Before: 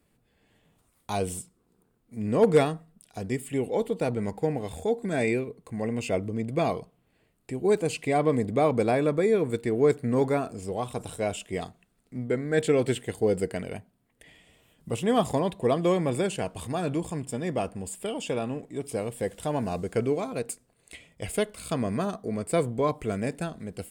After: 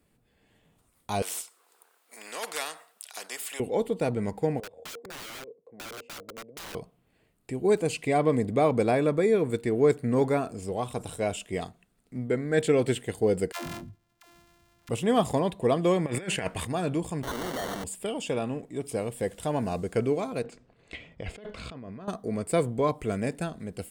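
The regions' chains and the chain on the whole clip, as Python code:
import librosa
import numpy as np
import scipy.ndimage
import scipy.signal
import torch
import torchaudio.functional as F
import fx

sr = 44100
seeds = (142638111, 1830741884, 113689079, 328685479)

y = fx.chain(x, sr, fx.bessel_highpass(hz=940.0, order=4),
    fx.spectral_comp(ratio=2.0), at=(1.22, 3.6))
y = fx.chain(y, sr, fx.bandpass_q(hz=500.0, q=5.9),
    fx.overflow_wrap(gain_db=36.5),
    fx.band_squash(depth_pct=40), at=(4.6, 6.75))
y = fx.chain(y, sr, fx.sample_sort(block=128),
    fx.peak_eq(hz=420.0, db=-7.5, octaves=0.96),
    fx.dispersion(late='lows', ms=134.0, hz=320.0), at=(13.52, 14.89))
y = fx.chain(y, sr, fx.peak_eq(hz=1900.0, db=13.5, octaves=0.8),
    fx.over_compress(threshold_db=-30.0, ratio=-0.5), at=(16.06, 16.65))
y = fx.chain(y, sr, fx.clip_1bit(),
    fx.highpass(hz=260.0, slope=12),
    fx.sample_hold(seeds[0], rate_hz=2500.0, jitter_pct=0), at=(17.23, 17.84))
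y = fx.chain(y, sr, fx.over_compress(threshold_db=-38.0, ratio=-1.0),
    fx.air_absorb(metres=190.0), at=(20.44, 22.08))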